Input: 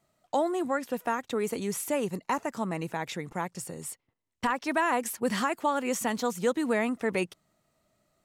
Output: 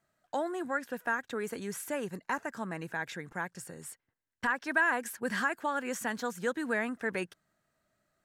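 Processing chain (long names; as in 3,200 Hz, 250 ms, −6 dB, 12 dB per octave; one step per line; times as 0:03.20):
parametric band 1,600 Hz +14.5 dB 0.33 octaves
level −6.5 dB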